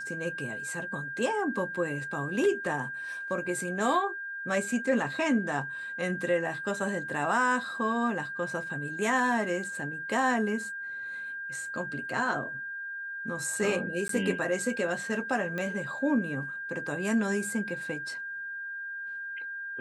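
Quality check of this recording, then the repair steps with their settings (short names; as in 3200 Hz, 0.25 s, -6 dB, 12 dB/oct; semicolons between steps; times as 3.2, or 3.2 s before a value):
tone 1600 Hz -35 dBFS
14.08–14.09 gap 13 ms
15.58 pop -21 dBFS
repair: de-click; notch 1600 Hz, Q 30; interpolate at 14.08, 13 ms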